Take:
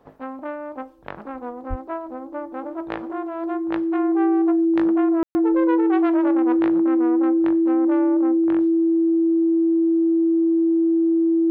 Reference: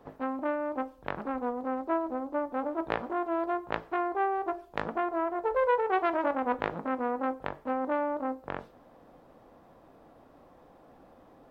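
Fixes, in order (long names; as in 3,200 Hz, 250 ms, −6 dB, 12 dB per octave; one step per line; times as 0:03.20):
notch filter 330 Hz, Q 30
0:01.69–0:01.81: high-pass filter 140 Hz 24 dB per octave
ambience match 0:05.23–0:05.35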